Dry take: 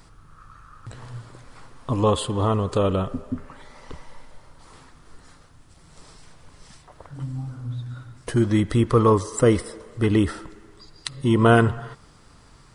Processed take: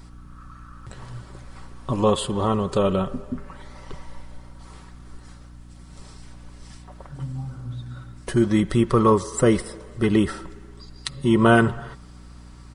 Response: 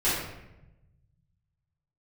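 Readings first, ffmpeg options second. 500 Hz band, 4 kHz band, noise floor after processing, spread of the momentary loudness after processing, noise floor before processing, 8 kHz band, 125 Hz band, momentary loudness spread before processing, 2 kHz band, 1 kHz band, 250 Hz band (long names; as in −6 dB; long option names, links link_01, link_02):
0.0 dB, +1.0 dB, −44 dBFS, 21 LU, −52 dBFS, +1.0 dB, −2.5 dB, 20 LU, +2.0 dB, +0.5 dB, +1.5 dB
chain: -af "aecho=1:1:5.3:0.45,aeval=exprs='val(0)+0.00708*(sin(2*PI*60*n/s)+sin(2*PI*2*60*n/s)/2+sin(2*PI*3*60*n/s)/3+sin(2*PI*4*60*n/s)/4+sin(2*PI*5*60*n/s)/5)':channel_layout=same"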